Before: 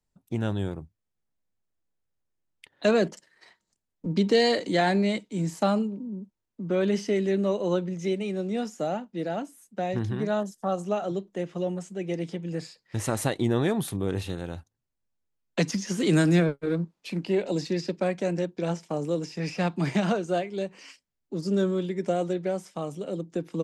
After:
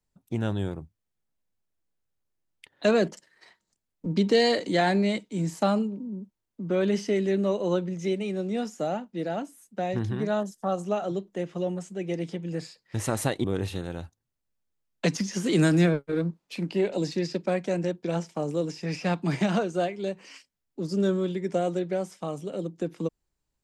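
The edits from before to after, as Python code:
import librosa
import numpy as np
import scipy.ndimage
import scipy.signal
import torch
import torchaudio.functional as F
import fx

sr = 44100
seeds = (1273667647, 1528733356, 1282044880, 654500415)

y = fx.edit(x, sr, fx.cut(start_s=13.44, length_s=0.54), tone=tone)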